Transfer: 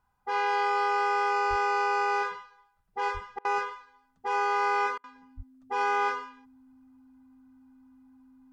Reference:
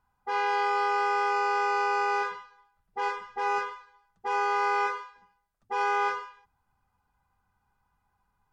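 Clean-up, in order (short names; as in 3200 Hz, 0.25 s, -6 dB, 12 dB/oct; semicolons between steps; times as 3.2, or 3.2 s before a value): notch 260 Hz, Q 30; 1.49–1.61 HPF 140 Hz 24 dB/oct; 3.13–3.25 HPF 140 Hz 24 dB/oct; 5.36–5.48 HPF 140 Hz 24 dB/oct; interpolate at 3.39/4.98, 57 ms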